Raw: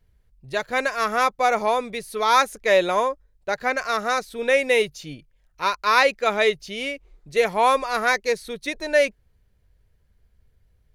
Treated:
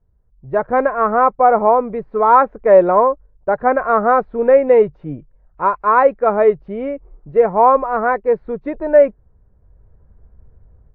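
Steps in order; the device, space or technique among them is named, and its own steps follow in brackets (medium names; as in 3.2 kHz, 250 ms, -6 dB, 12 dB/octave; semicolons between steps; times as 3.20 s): action camera in a waterproof case (low-pass 1.2 kHz 24 dB/octave; level rider gain up to 14.5 dB; AAC 48 kbps 32 kHz)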